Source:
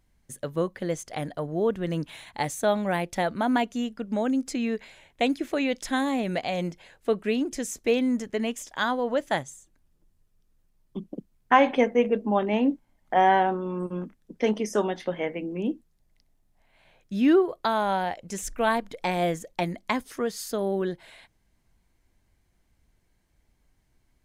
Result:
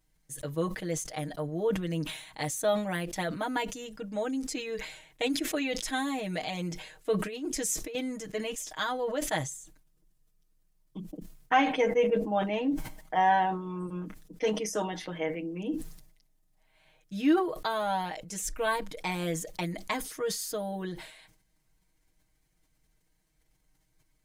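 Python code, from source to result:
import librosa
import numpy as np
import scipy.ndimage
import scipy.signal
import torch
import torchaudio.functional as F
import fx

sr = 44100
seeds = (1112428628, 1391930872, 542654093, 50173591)

y = fx.over_compress(x, sr, threshold_db=-28.0, ratio=-0.5, at=(7.19, 7.95))
y = fx.high_shelf(y, sr, hz=3800.0, db=7.5)
y = y + 0.96 * np.pad(y, (int(6.4 * sr / 1000.0), 0))[:len(y)]
y = fx.sustainer(y, sr, db_per_s=77.0)
y = y * 10.0 ** (-8.5 / 20.0)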